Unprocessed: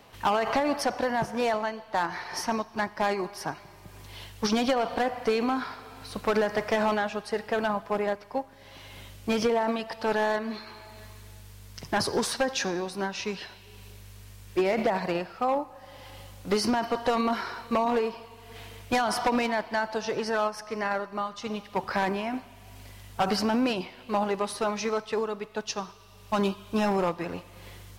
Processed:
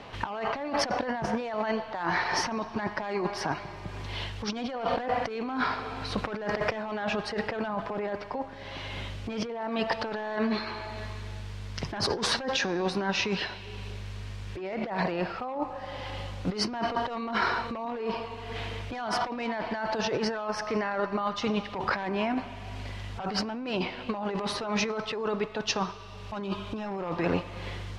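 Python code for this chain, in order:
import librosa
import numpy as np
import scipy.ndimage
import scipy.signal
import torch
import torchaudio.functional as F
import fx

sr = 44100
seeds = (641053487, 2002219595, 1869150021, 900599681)

y = scipy.signal.sosfilt(scipy.signal.butter(2, 4100.0, 'lowpass', fs=sr, output='sos'), x)
y = fx.over_compress(y, sr, threshold_db=-34.0, ratio=-1.0)
y = y * 10.0 ** (3.5 / 20.0)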